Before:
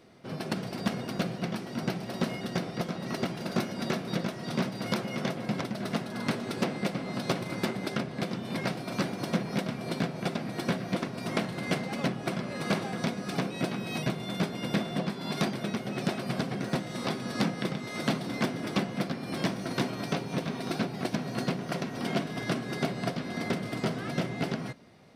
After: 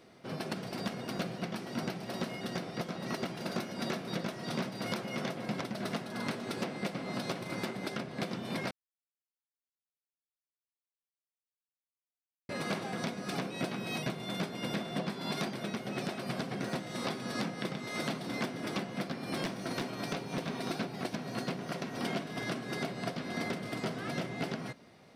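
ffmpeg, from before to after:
ffmpeg -i in.wav -filter_complex "[0:a]asettb=1/sr,asplit=3[link_01][link_02][link_03];[link_01]atrim=end=19.424[link_04];[link_02]atrim=start=19.42:end=20.63,asetpts=PTS-STARTPTS,afade=type=in:duration=0.004:curve=qsin,afade=type=out:start_time=1.206:duration=0.004:curve=qsin,aeval=exprs='clip(val(0),-1,0.0531)':channel_layout=same[link_05];[link_03]atrim=start=20.626[link_06];[link_04][link_05]acrossfade=duration=0.004:curve1=hsin:curve2=qsin[link_07];[link_07][link_06]acrossfade=duration=0.004:curve1=qsin:curve2=hsin,asplit=3[link_08][link_09][link_10];[link_08]atrim=end=8.71,asetpts=PTS-STARTPTS,afade=type=out:start_time=8.706:duration=0.004:curve=hsin[link_11];[link_09]atrim=start=8.71:end=12.49,asetpts=PTS-STARTPTS,volume=0[link_12];[link_10]atrim=start=12.49,asetpts=PTS-STARTPTS,afade=type=in:duration=0.004:curve=hsin[link_13];[link_11][link_12][link_13]concat=n=3:v=0:a=1,lowshelf=frequency=220:gain=-5,alimiter=limit=-23.5dB:level=0:latency=1:release=298" out.wav

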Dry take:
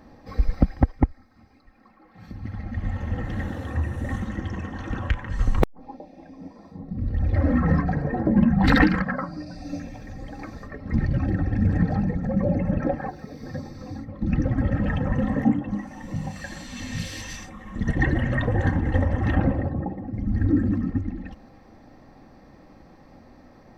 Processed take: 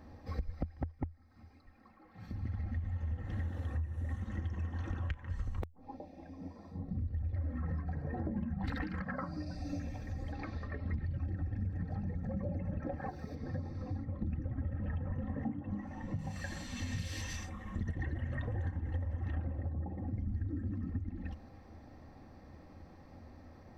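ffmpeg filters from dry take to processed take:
ffmpeg -i in.wav -filter_complex "[0:a]asettb=1/sr,asplit=3[link_01][link_02][link_03];[link_01]atrim=end=0.804[link_04];[link_02]atrim=start=0.8:end=2.54,asetpts=PTS-STARTPTS,afade=type=in:duration=0.004:curve=qsin,afade=type=out:start_time=1.736:duration=0.004:curve=qsin,equalizer=frequency=67:width=3.6:gain=-6.5[link_05];[link_03]atrim=start=2.536[link_06];[link_04][link_05]acrossfade=duration=0.004:curve1=hsin:curve2=qsin[link_07];[link_07][link_06]acrossfade=duration=0.004:curve1=qsin:curve2=hsin,asettb=1/sr,asplit=3[link_08][link_09][link_10];[link_08]atrim=end=10.324[link_11];[link_09]atrim=start=10.32:end=11.15,asetpts=PTS-STARTPTS,afade=type=in:duration=0.004:curve=qsin,afade=type=out:start_time=0.826:duration=0.004:curve=qsin,lowpass=frequency=3800:width_type=q:width=1.6[link_12];[link_10]atrim=start=11.146[link_13];[link_11][link_12]acrossfade=duration=0.004:curve1=hsin:curve2=qsin[link_14];[link_14][link_13]acrossfade=duration=0.004:curve1=qsin:curve2=hsin,asettb=1/sr,asplit=3[link_15][link_16][link_17];[link_15]atrim=end=13.354[link_18];[link_16]atrim=start=13.35:end=16.19,asetpts=PTS-STARTPTS,afade=type=in:duration=0.004:curve=qsin,afade=type=out:start_time=2.836:duration=0.004:curve=qsin,aemphasis=mode=reproduction:type=75fm[link_19];[link_17]atrim=start=16.186[link_20];[link_18][link_19]acrossfade=duration=0.004:curve1=hsin:curve2=qsin[link_21];[link_21][link_20]acrossfade=duration=0.004:curve1=qsin:curve2=hsin,equalizer=frequency=82:width_type=o:width=0.49:gain=14,acompressor=threshold=-27dB:ratio=10,volume=-6.5dB" out.wav

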